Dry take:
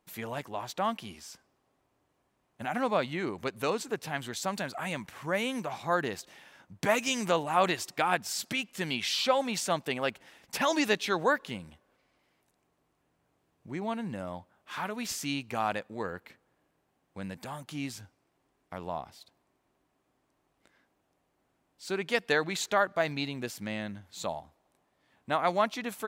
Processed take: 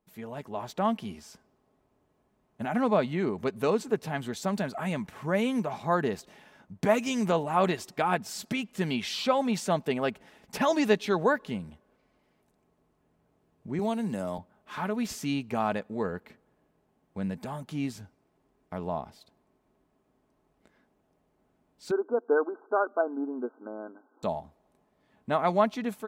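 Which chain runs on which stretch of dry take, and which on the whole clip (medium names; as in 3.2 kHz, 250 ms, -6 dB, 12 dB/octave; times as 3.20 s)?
13.79–14.38 s: tone controls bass -5 dB, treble +13 dB + three bands compressed up and down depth 40%
21.91–24.23 s: brick-wall FIR band-pass 240–1600 Hz + peaking EQ 610 Hz -5 dB 0.22 oct
whole clip: tilt shelf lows +5.5 dB; comb 4.7 ms, depth 32%; level rider gain up to 8.5 dB; trim -7.5 dB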